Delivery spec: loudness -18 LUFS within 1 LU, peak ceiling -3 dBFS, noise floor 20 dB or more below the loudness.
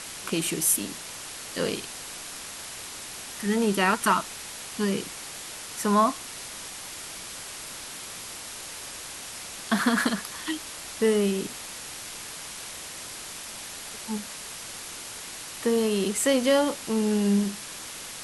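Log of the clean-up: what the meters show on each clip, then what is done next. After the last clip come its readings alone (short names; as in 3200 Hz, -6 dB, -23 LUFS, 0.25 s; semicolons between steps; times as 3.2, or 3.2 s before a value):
noise floor -40 dBFS; noise floor target -49 dBFS; loudness -28.5 LUFS; peak -9.5 dBFS; loudness target -18.0 LUFS
-> denoiser 9 dB, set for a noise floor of -40 dBFS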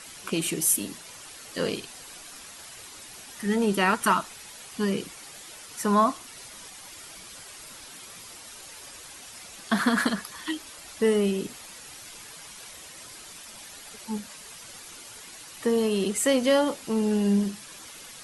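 noise floor -45 dBFS; noise floor target -46 dBFS
-> denoiser 6 dB, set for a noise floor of -45 dBFS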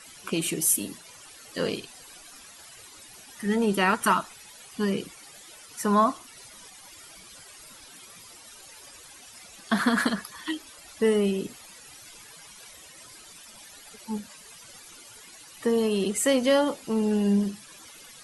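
noise floor -49 dBFS; loudness -26.0 LUFS; peak -10.0 dBFS; loudness target -18.0 LUFS
-> gain +8 dB; limiter -3 dBFS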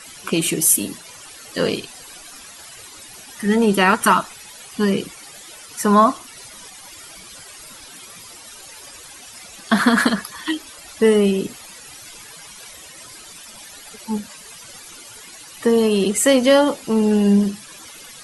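loudness -18.0 LUFS; peak -3.0 dBFS; noise floor -41 dBFS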